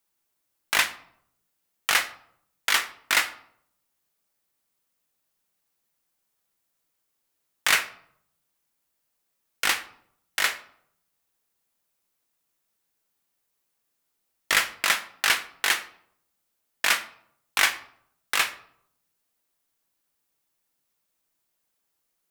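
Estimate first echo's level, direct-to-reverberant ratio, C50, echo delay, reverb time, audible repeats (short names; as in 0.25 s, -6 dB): none, 9.0 dB, 15.0 dB, none, 0.70 s, none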